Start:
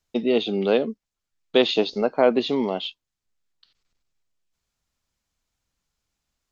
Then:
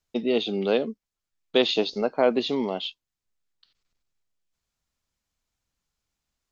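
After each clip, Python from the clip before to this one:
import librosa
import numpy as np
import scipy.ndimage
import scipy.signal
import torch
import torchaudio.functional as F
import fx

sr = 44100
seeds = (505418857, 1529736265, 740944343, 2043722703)

y = fx.dynamic_eq(x, sr, hz=5600.0, q=0.85, threshold_db=-41.0, ratio=4.0, max_db=4)
y = F.gain(torch.from_numpy(y), -3.0).numpy()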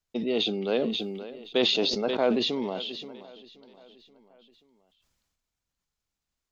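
y = fx.echo_feedback(x, sr, ms=529, feedback_pct=56, wet_db=-20.5)
y = fx.sustainer(y, sr, db_per_s=30.0)
y = F.gain(torch.from_numpy(y), -4.5).numpy()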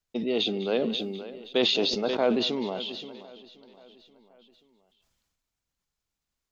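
y = x + 10.0 ** (-17.0 / 20.0) * np.pad(x, (int(200 * sr / 1000.0), 0))[:len(x)]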